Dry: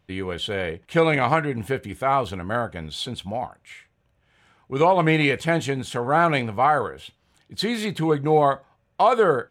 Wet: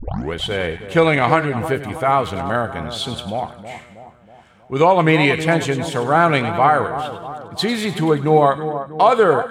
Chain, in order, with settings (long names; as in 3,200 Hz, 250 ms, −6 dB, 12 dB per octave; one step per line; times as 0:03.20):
turntable start at the beginning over 0.33 s
echo with a time of its own for lows and highs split 1,300 Hz, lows 320 ms, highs 100 ms, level −11 dB
level +4.5 dB